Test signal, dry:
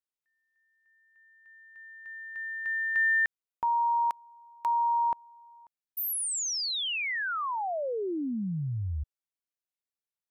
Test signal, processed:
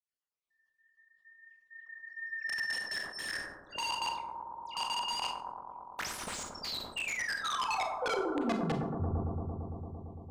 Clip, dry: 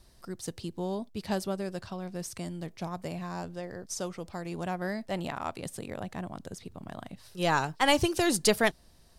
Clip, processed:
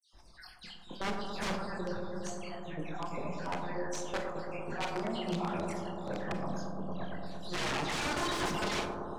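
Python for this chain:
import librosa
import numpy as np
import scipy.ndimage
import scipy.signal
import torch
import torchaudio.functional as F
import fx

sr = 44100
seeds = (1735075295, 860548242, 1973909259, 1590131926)

p1 = fx.spec_dropout(x, sr, seeds[0], share_pct=59)
p2 = fx.low_shelf(p1, sr, hz=410.0, db=-5.5)
p3 = fx.chorus_voices(p2, sr, voices=6, hz=0.73, base_ms=23, depth_ms=3.6, mix_pct=45)
p4 = 10.0 ** (-31.5 / 20.0) * np.tanh(p3 / 10.0 ** (-31.5 / 20.0))
p5 = fx.wow_flutter(p4, sr, seeds[1], rate_hz=0.32, depth_cents=19.0)
p6 = fx.dispersion(p5, sr, late='lows', ms=132.0, hz=2400.0)
p7 = (np.mod(10.0 ** (35.5 / 20.0) * p6 + 1.0, 2.0) - 1.0) / 10.0 ** (35.5 / 20.0)
p8 = fx.air_absorb(p7, sr, metres=90.0)
p9 = p8 + fx.echo_bbd(p8, sr, ms=113, stages=1024, feedback_pct=85, wet_db=-5.5, dry=0)
p10 = fx.rev_schroeder(p9, sr, rt60_s=0.37, comb_ms=30, drr_db=8.0)
p11 = fx.sustainer(p10, sr, db_per_s=72.0)
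y = p11 * librosa.db_to_amplitude(7.5)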